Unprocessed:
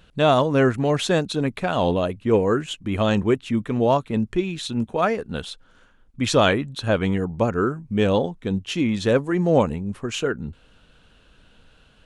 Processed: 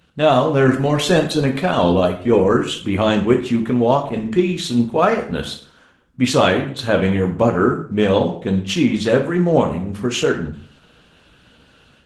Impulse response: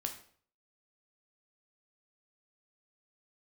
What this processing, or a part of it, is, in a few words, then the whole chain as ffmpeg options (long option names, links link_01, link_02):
far-field microphone of a smart speaker: -filter_complex "[1:a]atrim=start_sample=2205[link_01];[0:a][link_01]afir=irnorm=-1:irlink=0,highpass=82,dynaudnorm=framelen=130:gausssize=3:maxgain=7.5dB" -ar 48000 -c:a libopus -b:a 16k